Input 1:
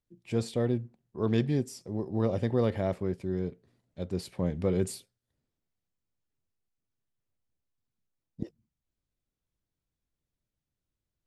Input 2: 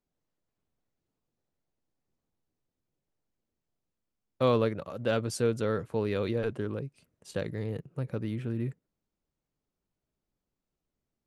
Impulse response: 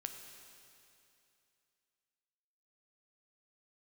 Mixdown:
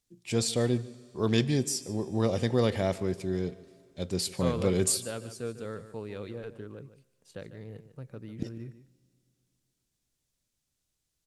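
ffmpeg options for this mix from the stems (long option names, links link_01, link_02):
-filter_complex "[0:a]equalizer=frequency=7300:width_type=o:width=2.6:gain=14,volume=-1dB,asplit=3[link_01][link_02][link_03];[link_02]volume=-9.5dB[link_04];[link_03]volume=-18dB[link_05];[1:a]aeval=exprs='0.237*(cos(1*acos(clip(val(0)/0.237,-1,1)))-cos(1*PI/2))+0.0237*(cos(3*acos(clip(val(0)/0.237,-1,1)))-cos(3*PI/2))':channel_layout=same,volume=-7.5dB,asplit=3[link_06][link_07][link_08];[link_07]volume=-17.5dB[link_09];[link_08]volume=-12dB[link_10];[2:a]atrim=start_sample=2205[link_11];[link_04][link_09]amix=inputs=2:normalize=0[link_12];[link_12][link_11]afir=irnorm=-1:irlink=0[link_13];[link_05][link_10]amix=inputs=2:normalize=0,aecho=0:1:149:1[link_14];[link_01][link_06][link_13][link_14]amix=inputs=4:normalize=0"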